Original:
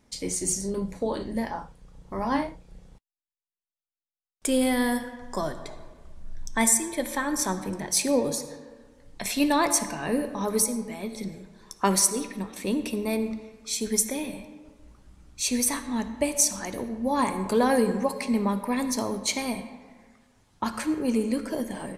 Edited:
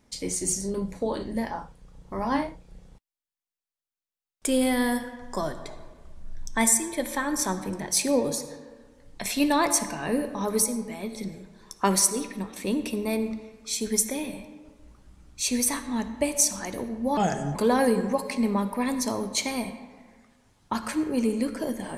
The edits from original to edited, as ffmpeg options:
ffmpeg -i in.wav -filter_complex "[0:a]asplit=3[link_01][link_02][link_03];[link_01]atrim=end=17.174[link_04];[link_02]atrim=start=17.17:end=17.46,asetpts=PTS-STARTPTS,asetrate=33516,aresample=44100[link_05];[link_03]atrim=start=17.456[link_06];[link_04][link_05]acrossfade=duration=0.004:curve1=hsin:curve2=hsin[link_07];[link_07][link_06]acrossfade=duration=0.004:curve1=hsin:curve2=hsin" out.wav

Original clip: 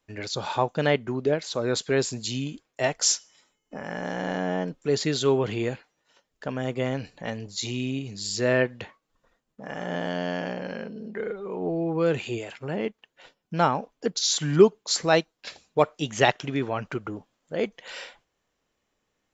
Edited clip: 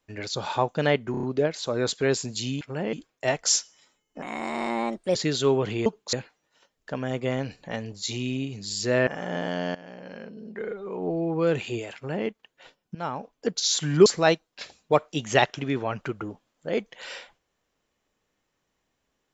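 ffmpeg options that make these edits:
ffmpeg -i in.wav -filter_complex "[0:a]asplit=15[link_01][link_02][link_03][link_04][link_05][link_06][link_07][link_08][link_09][link_10][link_11][link_12][link_13][link_14][link_15];[link_01]atrim=end=1.142[link_16];[link_02]atrim=start=1.108:end=1.142[link_17];[link_03]atrim=start=1.108:end=1.142[link_18];[link_04]atrim=start=1.108:end=1.142[link_19];[link_05]atrim=start=1.108:end=2.492[link_20];[link_06]atrim=start=12.538:end=12.862[link_21];[link_07]atrim=start=2.488:end=3.784[link_22];[link_08]atrim=start=3.78:end=4.96,asetpts=PTS-STARTPTS,asetrate=56007,aresample=44100[link_23];[link_09]atrim=start=4.956:end=5.672[link_24];[link_10]atrim=start=14.648:end=14.922[link_25];[link_11]atrim=start=5.668:end=8.612[link_26];[link_12]atrim=start=9.658:end=10.34,asetpts=PTS-STARTPTS,afade=type=out:start_time=0.678:duration=0.004:curve=hsin:silence=0.11885[link_27];[link_13]atrim=start=10.34:end=13.54,asetpts=PTS-STARTPTS,afade=type=in:duration=1.53:curve=qsin:silence=0.11885,afade=type=out:start_time=3.196:duration=0.004:curve=hsin:silence=0.149624[link_28];[link_14]atrim=start=13.54:end=14.652,asetpts=PTS-STARTPTS,afade=type=in:duration=0.53:silence=0.149624[link_29];[link_15]atrim=start=14.918[link_30];[link_16][link_17]acrossfade=duration=0.004:curve1=hsin:curve2=hsin[link_31];[link_31][link_18]acrossfade=duration=0.004:curve1=hsin:curve2=hsin[link_32];[link_32][link_19]acrossfade=duration=0.004:curve1=hsin:curve2=hsin[link_33];[link_33][link_20]acrossfade=duration=0.004:curve1=hsin:curve2=hsin[link_34];[link_34][link_21]acrossfade=duration=0.004:curve1=hsin:curve2=hsin[link_35];[link_35][link_22]acrossfade=duration=0.004:curve1=hsin:curve2=hsin[link_36];[link_36][link_23]acrossfade=duration=0.004:curve1=hsin:curve2=hsin[link_37];[link_37][link_24]acrossfade=duration=0.004:curve1=hsin:curve2=hsin[link_38];[link_38][link_25]acrossfade=duration=0.004:curve1=hsin:curve2=hsin[link_39];[link_39][link_26]acrossfade=duration=0.004:curve1=hsin:curve2=hsin[link_40];[link_27][link_28][link_29]concat=n=3:v=0:a=1[link_41];[link_40][link_41]acrossfade=duration=0.004:curve1=hsin:curve2=hsin[link_42];[link_42][link_30]acrossfade=duration=0.004:curve1=hsin:curve2=hsin" out.wav

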